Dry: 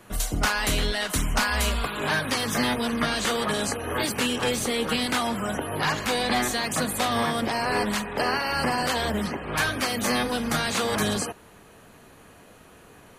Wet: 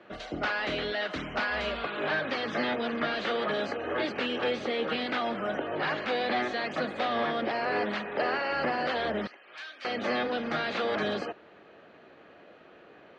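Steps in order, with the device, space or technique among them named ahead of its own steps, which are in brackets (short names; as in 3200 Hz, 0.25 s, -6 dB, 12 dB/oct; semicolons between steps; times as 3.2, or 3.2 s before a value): overdrive pedal into a guitar cabinet (overdrive pedal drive 13 dB, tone 1700 Hz, clips at -10 dBFS; speaker cabinet 89–4400 Hz, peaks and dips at 110 Hz -5 dB, 340 Hz +6 dB, 580 Hz +5 dB, 990 Hz -7 dB); 9.27–9.85 differentiator; gain -6.5 dB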